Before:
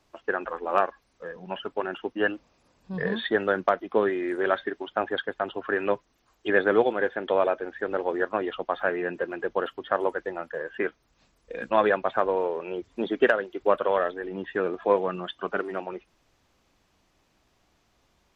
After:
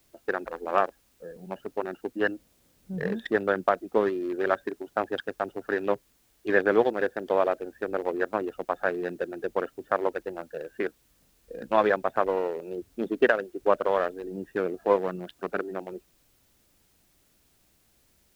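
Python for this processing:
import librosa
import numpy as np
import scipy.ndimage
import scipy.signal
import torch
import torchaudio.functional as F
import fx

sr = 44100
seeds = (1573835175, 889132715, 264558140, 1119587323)

y = fx.wiener(x, sr, points=41)
y = fx.dmg_noise_colour(y, sr, seeds[0], colour='white', level_db=-67.0)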